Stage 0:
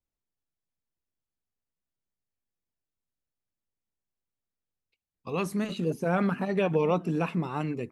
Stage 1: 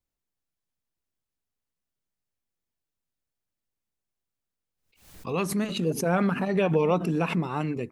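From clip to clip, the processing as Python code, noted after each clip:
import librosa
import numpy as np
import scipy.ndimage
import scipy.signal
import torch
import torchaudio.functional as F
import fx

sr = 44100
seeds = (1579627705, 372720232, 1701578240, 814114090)

y = fx.pre_swell(x, sr, db_per_s=99.0)
y = y * librosa.db_to_amplitude(2.0)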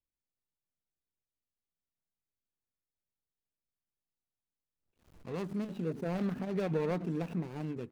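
y = scipy.signal.medfilt(x, 41)
y = y * librosa.db_to_amplitude(-8.0)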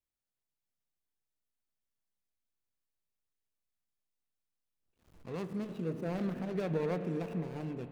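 y = fx.rev_spring(x, sr, rt60_s=3.8, pass_ms=(31,), chirp_ms=35, drr_db=9.0)
y = y * librosa.db_to_amplitude(-1.5)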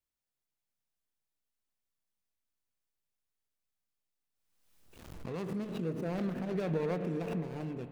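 y = fx.pre_swell(x, sr, db_per_s=47.0)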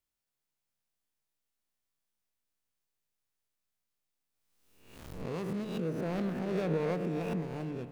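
y = fx.spec_swells(x, sr, rise_s=0.65)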